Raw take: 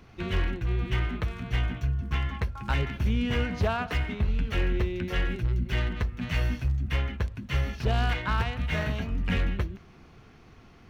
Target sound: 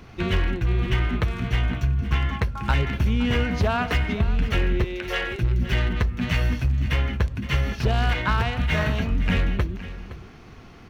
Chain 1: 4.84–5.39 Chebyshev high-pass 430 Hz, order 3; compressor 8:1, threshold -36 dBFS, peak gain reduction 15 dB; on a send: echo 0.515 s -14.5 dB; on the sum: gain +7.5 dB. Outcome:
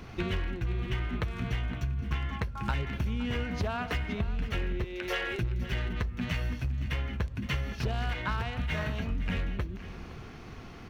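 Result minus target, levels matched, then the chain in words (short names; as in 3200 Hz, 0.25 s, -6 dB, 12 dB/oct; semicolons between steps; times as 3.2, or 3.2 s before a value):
compressor: peak gain reduction +10 dB
4.84–5.39 Chebyshev high-pass 430 Hz, order 3; compressor 8:1, threshold -24.5 dBFS, peak gain reduction 5 dB; on a send: echo 0.515 s -14.5 dB; on the sum: gain +7.5 dB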